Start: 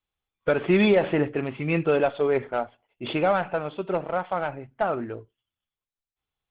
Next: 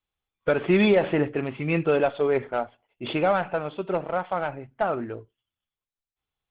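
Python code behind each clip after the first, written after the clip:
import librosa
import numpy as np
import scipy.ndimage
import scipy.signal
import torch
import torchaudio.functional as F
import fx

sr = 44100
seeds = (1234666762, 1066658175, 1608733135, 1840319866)

y = x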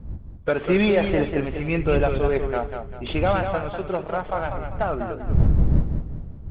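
y = fx.dmg_wind(x, sr, seeds[0], corner_hz=82.0, level_db=-26.0)
y = fx.echo_warbled(y, sr, ms=197, feedback_pct=37, rate_hz=2.8, cents=101, wet_db=-7.0)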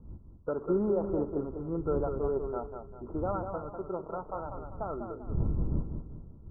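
y = scipy.signal.sosfilt(scipy.signal.cheby1(6, 6, 1400.0, 'lowpass', fs=sr, output='sos'), x)
y = y * 10.0 ** (-7.0 / 20.0)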